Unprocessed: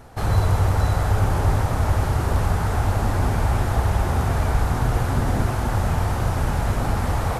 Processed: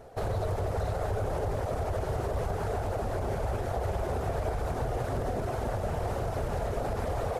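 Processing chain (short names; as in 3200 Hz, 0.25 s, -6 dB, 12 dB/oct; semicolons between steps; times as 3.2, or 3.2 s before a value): band shelf 520 Hz +10.5 dB 1.1 oct; reverb removal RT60 0.57 s; limiter -14.5 dBFS, peak gain reduction 8 dB; on a send: split-band echo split 440 Hz, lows 0.1 s, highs 0.185 s, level -14 dB; on the sum: Doppler distortion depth 0.3 ms; gain -8 dB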